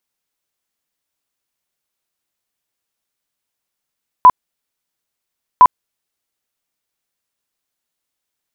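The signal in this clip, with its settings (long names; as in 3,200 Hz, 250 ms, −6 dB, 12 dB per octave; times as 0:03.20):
tone bursts 1,000 Hz, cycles 48, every 1.36 s, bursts 2, −1.5 dBFS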